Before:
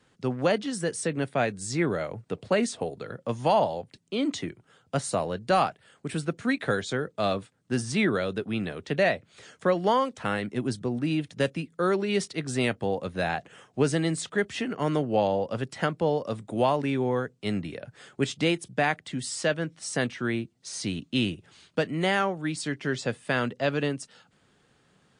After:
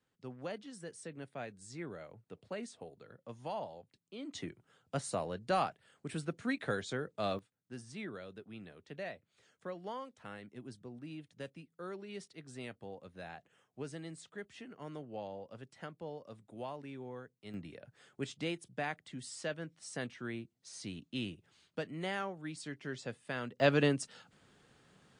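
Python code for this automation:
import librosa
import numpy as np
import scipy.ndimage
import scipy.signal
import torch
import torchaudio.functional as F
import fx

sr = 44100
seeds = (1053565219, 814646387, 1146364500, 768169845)

y = fx.gain(x, sr, db=fx.steps((0.0, -18.0), (4.35, -9.0), (7.39, -19.5), (17.54, -13.0), (23.6, -1.0)))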